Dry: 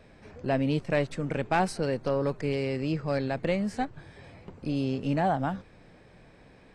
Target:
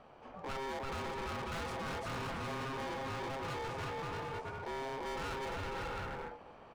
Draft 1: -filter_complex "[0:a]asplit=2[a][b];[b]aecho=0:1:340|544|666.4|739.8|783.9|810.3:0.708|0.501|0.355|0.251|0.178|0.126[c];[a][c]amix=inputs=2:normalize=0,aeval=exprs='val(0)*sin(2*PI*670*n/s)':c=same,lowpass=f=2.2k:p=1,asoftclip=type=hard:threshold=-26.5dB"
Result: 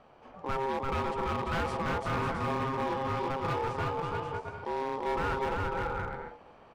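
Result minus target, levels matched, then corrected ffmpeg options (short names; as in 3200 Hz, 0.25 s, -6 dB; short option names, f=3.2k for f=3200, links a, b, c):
hard clip: distortion -7 dB
-filter_complex "[0:a]asplit=2[a][b];[b]aecho=0:1:340|544|666.4|739.8|783.9|810.3:0.708|0.501|0.355|0.251|0.178|0.126[c];[a][c]amix=inputs=2:normalize=0,aeval=exprs='val(0)*sin(2*PI*670*n/s)':c=same,lowpass=f=2.2k:p=1,asoftclip=type=hard:threshold=-38dB"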